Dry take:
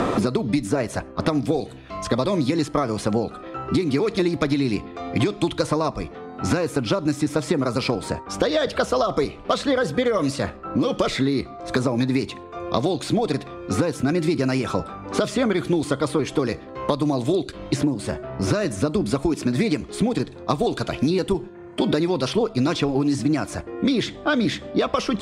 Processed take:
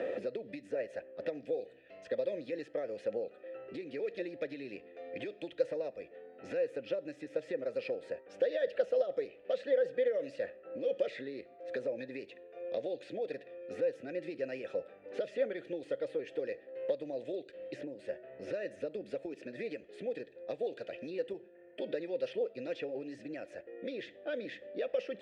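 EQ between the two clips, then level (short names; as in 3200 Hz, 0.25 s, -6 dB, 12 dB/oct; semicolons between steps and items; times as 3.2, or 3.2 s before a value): vowel filter e; -4.5 dB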